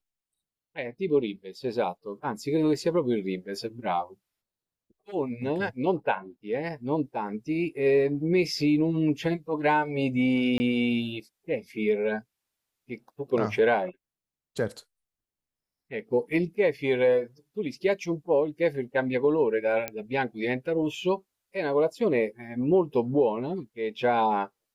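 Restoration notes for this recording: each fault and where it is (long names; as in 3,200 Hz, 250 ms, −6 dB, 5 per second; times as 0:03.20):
0:10.58–0:10.60: drop-out 20 ms
0:19.88: click −14 dBFS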